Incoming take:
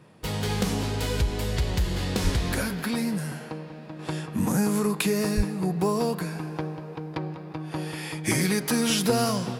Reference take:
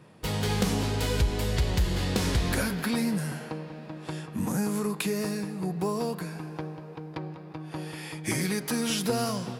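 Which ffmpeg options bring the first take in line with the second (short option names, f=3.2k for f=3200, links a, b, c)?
-filter_complex "[0:a]asplit=3[a][b][c];[a]afade=t=out:st=2.23:d=0.02[d];[b]highpass=f=140:w=0.5412,highpass=f=140:w=1.3066,afade=t=in:st=2.23:d=0.02,afade=t=out:st=2.35:d=0.02[e];[c]afade=t=in:st=2.35:d=0.02[f];[d][e][f]amix=inputs=3:normalize=0,asplit=3[g][h][i];[g]afade=t=out:st=5.36:d=0.02[j];[h]highpass=f=140:w=0.5412,highpass=f=140:w=1.3066,afade=t=in:st=5.36:d=0.02,afade=t=out:st=5.48:d=0.02[k];[i]afade=t=in:st=5.48:d=0.02[l];[j][k][l]amix=inputs=3:normalize=0,asetnsamples=n=441:p=0,asendcmd='3.99 volume volume -4.5dB',volume=0dB"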